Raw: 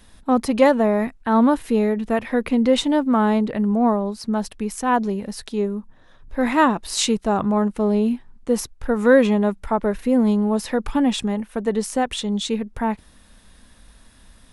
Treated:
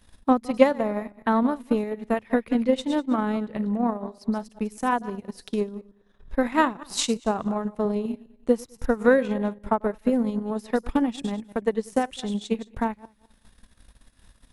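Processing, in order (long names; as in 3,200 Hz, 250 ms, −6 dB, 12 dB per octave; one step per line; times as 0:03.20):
feedback delay that plays each chunk backwards 102 ms, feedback 42%, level −11 dB
transient designer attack +10 dB, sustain −10 dB
level −8.5 dB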